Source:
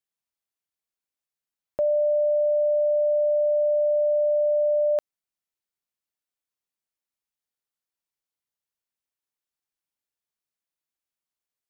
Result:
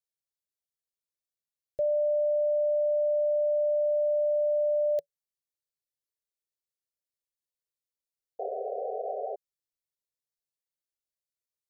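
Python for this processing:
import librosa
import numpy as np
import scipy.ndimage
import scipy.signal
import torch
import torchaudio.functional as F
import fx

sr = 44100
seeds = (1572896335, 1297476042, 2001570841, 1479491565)

y = fx.curve_eq(x, sr, hz=(160.0, 230.0, 360.0, 570.0, 890.0, 1300.0, 1800.0, 2600.0, 4000.0), db=(0, -22, -4, 2, -29, -28, -8, -11, -1))
y = fx.quant_dither(y, sr, seeds[0], bits=12, dither='none', at=(3.84, 4.95))
y = fx.spec_paint(y, sr, seeds[1], shape='noise', start_s=8.39, length_s=0.97, low_hz=390.0, high_hz=780.0, level_db=-30.0)
y = y * librosa.db_to_amplitude(-3.5)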